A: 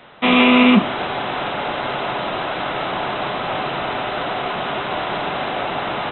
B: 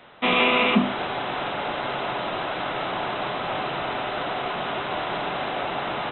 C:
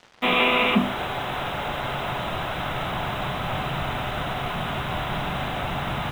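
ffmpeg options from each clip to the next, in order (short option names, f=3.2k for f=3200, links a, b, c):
-af "bandreject=f=50:t=h:w=6,bandreject=f=100:t=h:w=6,bandreject=f=150:t=h:w=6,bandreject=f=200:t=h:w=6,bandreject=f=250:t=h:w=6,volume=-4.5dB"
-af "asubboost=boost=9:cutoff=130,acrusher=bits=6:mix=0:aa=0.5"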